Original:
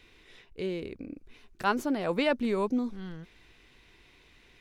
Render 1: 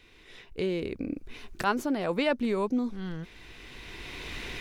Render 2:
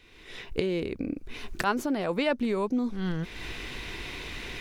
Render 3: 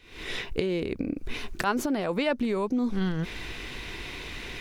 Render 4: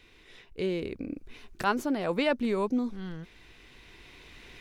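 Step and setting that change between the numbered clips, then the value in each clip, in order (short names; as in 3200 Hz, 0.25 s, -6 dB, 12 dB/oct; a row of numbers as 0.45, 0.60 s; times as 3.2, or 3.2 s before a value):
recorder AGC, rising by: 13, 33, 91, 5.1 dB/s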